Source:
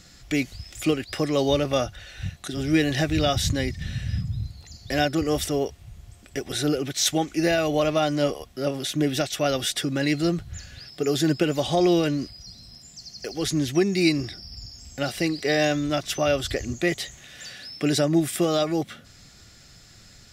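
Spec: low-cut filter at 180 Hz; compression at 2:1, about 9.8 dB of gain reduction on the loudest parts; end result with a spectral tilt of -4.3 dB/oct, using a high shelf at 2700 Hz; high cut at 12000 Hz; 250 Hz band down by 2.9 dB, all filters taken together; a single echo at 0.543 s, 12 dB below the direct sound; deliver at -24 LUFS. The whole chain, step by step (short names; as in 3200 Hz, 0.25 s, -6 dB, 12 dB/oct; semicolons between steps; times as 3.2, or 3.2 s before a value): HPF 180 Hz; LPF 12000 Hz; bell 250 Hz -3 dB; high shelf 2700 Hz -5 dB; compressor 2:1, threshold -37 dBFS; echo 0.543 s -12 dB; gain +11.5 dB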